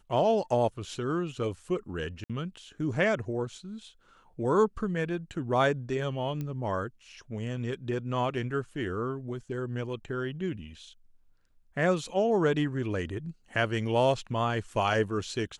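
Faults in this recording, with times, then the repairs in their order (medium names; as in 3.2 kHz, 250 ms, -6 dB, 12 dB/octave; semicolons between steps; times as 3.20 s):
2.24–2.30 s: dropout 56 ms
6.41 s: pop -23 dBFS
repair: de-click; interpolate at 2.24 s, 56 ms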